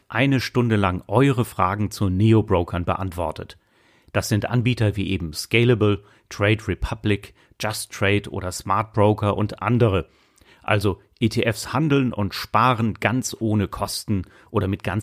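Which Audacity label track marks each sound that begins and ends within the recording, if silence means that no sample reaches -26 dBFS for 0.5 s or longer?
4.150000	10.010000	sound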